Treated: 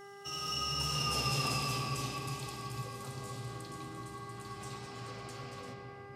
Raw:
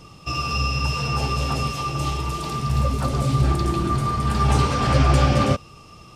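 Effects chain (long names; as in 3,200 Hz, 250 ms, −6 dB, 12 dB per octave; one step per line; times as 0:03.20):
source passing by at 0:01.27, 21 m/s, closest 11 metres
high-pass filter 91 Hz 24 dB per octave
first-order pre-emphasis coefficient 0.8
convolution reverb RT60 3.5 s, pre-delay 6 ms, DRR −0.5 dB
hum with harmonics 400 Hz, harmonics 5, −51 dBFS −4 dB per octave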